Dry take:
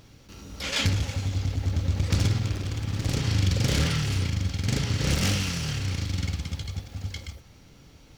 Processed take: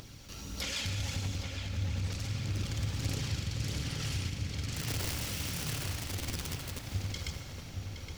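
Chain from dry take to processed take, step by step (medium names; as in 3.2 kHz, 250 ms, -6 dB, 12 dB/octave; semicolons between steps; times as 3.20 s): rattle on loud lows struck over -21 dBFS, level -27 dBFS; treble shelf 2.8 kHz +7.5 dB; upward compressor, threshold -44 dBFS; peak limiter -21.5 dBFS, peak gain reduction 10 dB; compression 5:1, threshold -34 dBFS, peak gain reduction 8 dB; phaser 1.6 Hz, delay 1.8 ms, feedback 32%; 4.74–6.86 s: integer overflow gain 29 dB; random-step tremolo; filtered feedback delay 818 ms, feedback 55%, low-pass 2.8 kHz, level -5 dB; reverberation RT60 1.7 s, pre-delay 73 ms, DRR 8 dB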